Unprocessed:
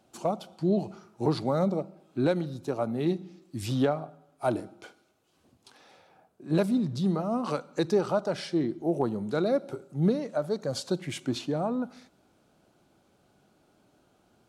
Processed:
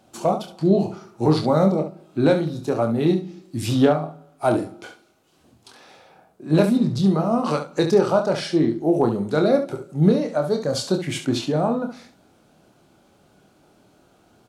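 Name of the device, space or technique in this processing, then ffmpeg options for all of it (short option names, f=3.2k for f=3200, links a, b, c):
slapback doubling: -filter_complex "[0:a]asplit=3[a][b][c];[b]adelay=26,volume=-6dB[d];[c]adelay=69,volume=-9.5dB[e];[a][d][e]amix=inputs=3:normalize=0,volume=7dB"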